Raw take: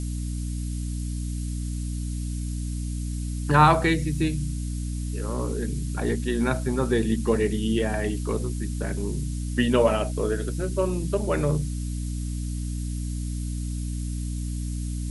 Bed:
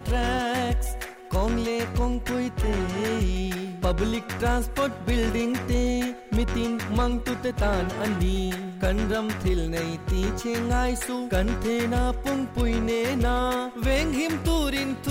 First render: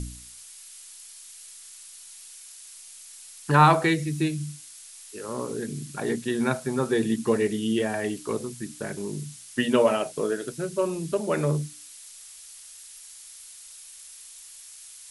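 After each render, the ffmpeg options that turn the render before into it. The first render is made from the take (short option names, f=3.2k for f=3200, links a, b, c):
-af "bandreject=f=60:t=h:w=4,bandreject=f=120:t=h:w=4,bandreject=f=180:t=h:w=4,bandreject=f=240:t=h:w=4,bandreject=f=300:t=h:w=4"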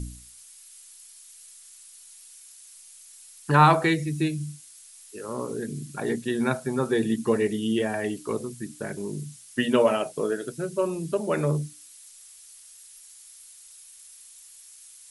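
-af "afftdn=nr=6:nf=-46"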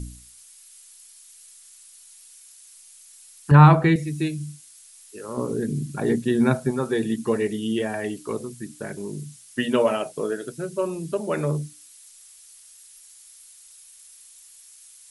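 -filter_complex "[0:a]asettb=1/sr,asplit=3[a][b][c];[a]atrim=end=3.514[d];[b]atrim=start=3.51:end=3.96,asetpts=PTS-STARTPTS,afade=t=in:d=0.004:c=qsin,afade=t=out:st=0.446:d=0.004:c=qsin,bass=f=250:g=12,treble=f=4k:g=-11[e];[c]atrim=start=3.956[f];[d][e]acrossfade=d=0.004:c1=hsin:c2=qsin[g];[g][f]acrossfade=d=0.004:c1=qsin:c2=hsin,asettb=1/sr,asplit=3[h][i][j];[h]atrim=end=5.374[k];[i]atrim=start=5.37:end=6.71,asetpts=PTS-STARTPTS,afade=t=in:d=0.004:c=qsin,afade=t=out:st=1.336:d=0.004:c=qsin,lowshelf=f=430:g=9[l];[j]atrim=start=6.706[m];[k][l]acrossfade=d=0.004:c1=hsin:c2=qsin[n];[n][m]acrossfade=d=0.004:c1=qsin:c2=hsin"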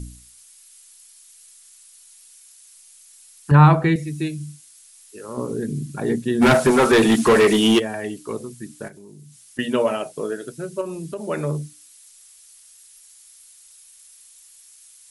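-filter_complex "[0:a]asplit=3[a][b][c];[a]afade=t=out:st=6.41:d=0.02[d];[b]asplit=2[e][f];[f]highpass=f=720:p=1,volume=29dB,asoftclip=type=tanh:threshold=-5.5dB[g];[e][g]amix=inputs=2:normalize=0,lowpass=f=4.2k:p=1,volume=-6dB,afade=t=in:st=6.41:d=0.02,afade=t=out:st=7.78:d=0.02[h];[c]afade=t=in:st=7.78:d=0.02[i];[d][h][i]amix=inputs=3:normalize=0,asettb=1/sr,asplit=3[j][k][l];[j]atrim=end=8.884[m];[k]atrim=start=8.88:end=9.59,asetpts=PTS-STARTPTS,afade=t=in:d=0.004:c=qsin,afade=t=out:st=0.706:d=0.004:c=qsin,acompressor=threshold=-44dB:ratio=3:attack=3.2:release=140:knee=1:detection=peak[n];[l]atrim=start=9.586[o];[m][n]acrossfade=d=0.004:c1=hsin:c2=qsin[p];[p][o]acrossfade=d=0.004:c1=qsin:c2=hsin,asettb=1/sr,asplit=3[q][r][s];[q]atrim=end=10.814[t];[r]atrim=start=10.81:end=11.27,asetpts=PTS-STARTPTS,afade=t=in:d=0.004:c=qsin,afade=t=out:st=0.456:d=0.004:c=qsin,acompressor=threshold=-26dB:ratio=3:attack=3.2:release=140:knee=1:detection=peak[u];[s]atrim=start=11.266[v];[t][u]acrossfade=d=0.004:c1=hsin:c2=qsin[w];[w][v]acrossfade=d=0.004:c1=qsin:c2=hsin"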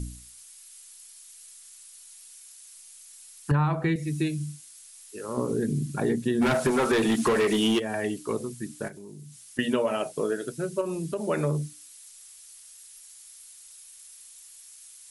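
-af "acompressor=threshold=-21dB:ratio=8"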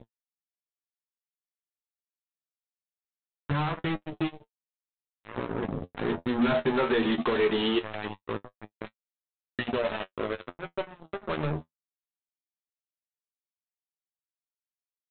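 -af "aresample=8000,acrusher=bits=3:mix=0:aa=0.5,aresample=44100,flanger=delay=8.7:depth=4.3:regen=43:speed=0.22:shape=triangular"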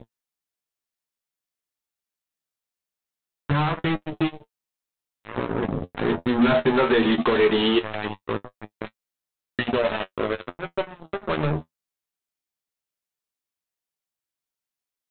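-af "volume=6dB"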